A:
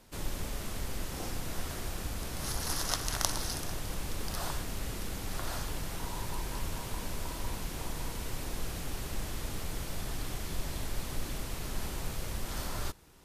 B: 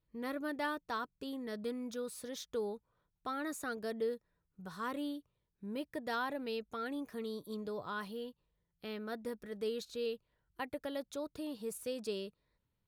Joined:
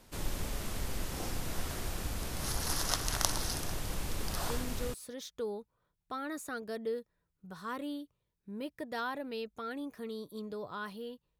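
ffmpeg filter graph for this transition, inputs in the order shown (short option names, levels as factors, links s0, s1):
-filter_complex "[0:a]apad=whole_dur=11.39,atrim=end=11.39,atrim=end=4.94,asetpts=PTS-STARTPTS[s0];[1:a]atrim=start=1.61:end=8.54,asetpts=PTS-STARTPTS[s1];[s0][s1]acrossfade=d=0.48:c1=log:c2=log"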